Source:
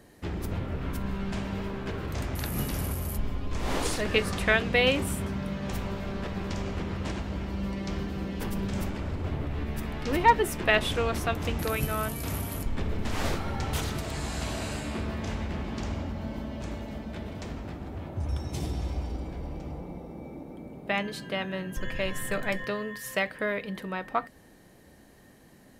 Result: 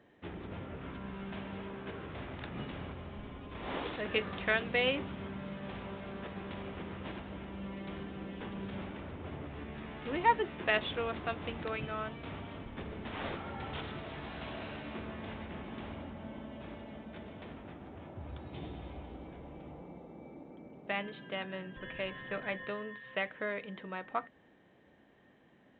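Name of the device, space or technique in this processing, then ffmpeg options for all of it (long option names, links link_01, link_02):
Bluetooth headset: -af "highpass=frequency=190:poles=1,aresample=8000,aresample=44100,volume=-6.5dB" -ar 16000 -c:a sbc -b:a 64k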